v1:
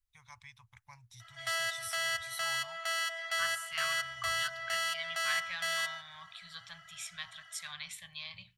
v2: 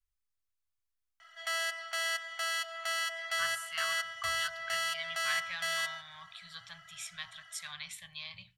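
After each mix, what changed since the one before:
first voice: muted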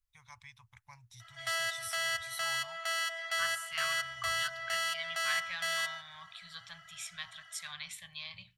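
first voice: unmuted

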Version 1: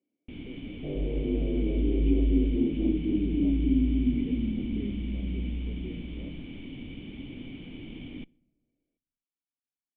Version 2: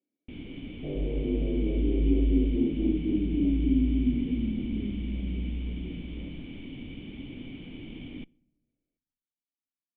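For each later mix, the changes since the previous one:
speech -4.5 dB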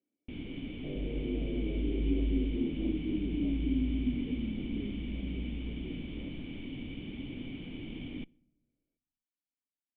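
second sound -6.5 dB

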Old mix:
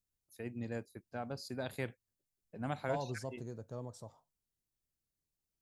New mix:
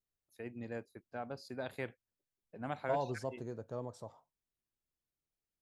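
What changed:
second voice +4.5 dB; master: add tone controls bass -6 dB, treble -9 dB

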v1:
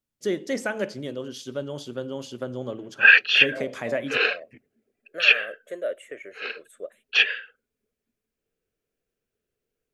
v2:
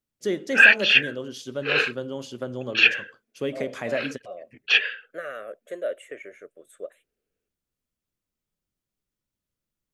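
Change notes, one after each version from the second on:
background: entry -2.45 s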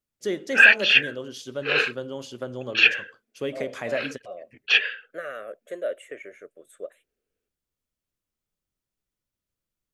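first voice: add peaking EQ 200 Hz -3.5 dB 1.6 oct

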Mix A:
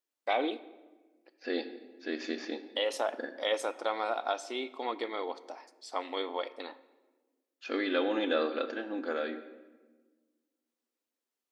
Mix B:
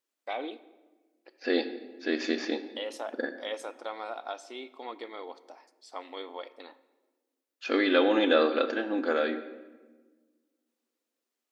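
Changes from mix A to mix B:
first voice -5.5 dB; second voice +6.5 dB

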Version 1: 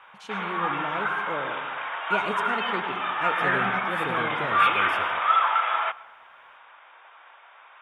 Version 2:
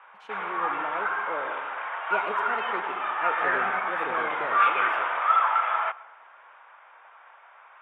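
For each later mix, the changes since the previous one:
master: add three-band isolator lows -19 dB, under 330 Hz, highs -17 dB, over 2.5 kHz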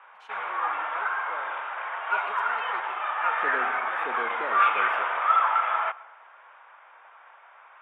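first voice: add high-pass 1.5 kHz 6 dB/octave; second voice: add brick-wall FIR high-pass 160 Hz

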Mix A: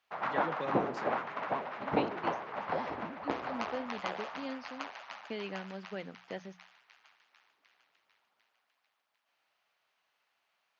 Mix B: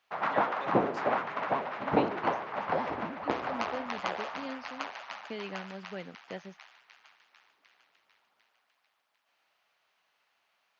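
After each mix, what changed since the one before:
first voice: add high-pass 580 Hz; second voice: remove hum notches 60/120/180 Hz; background +4.0 dB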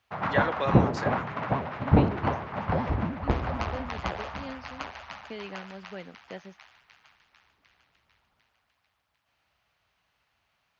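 first voice +12.0 dB; background: remove high-pass 360 Hz 12 dB/octave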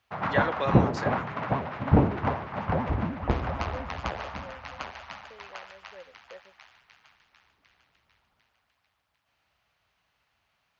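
second voice: add vowel filter e

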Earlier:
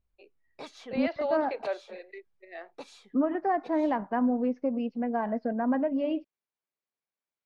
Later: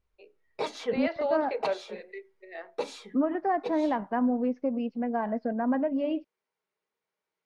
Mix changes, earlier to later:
background +7.5 dB; reverb: on, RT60 0.35 s

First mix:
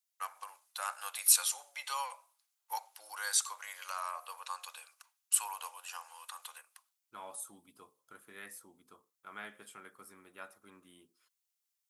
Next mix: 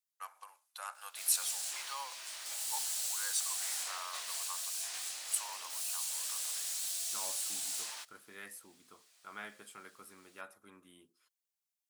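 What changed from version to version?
first voice -6.0 dB; background: unmuted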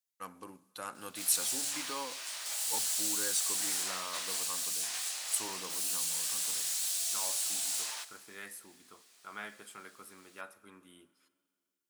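first voice: remove steep high-pass 680 Hz 36 dB/octave; reverb: on, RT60 2.2 s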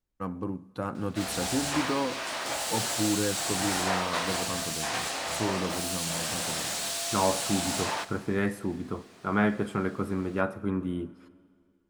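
first voice -10.0 dB; master: remove differentiator

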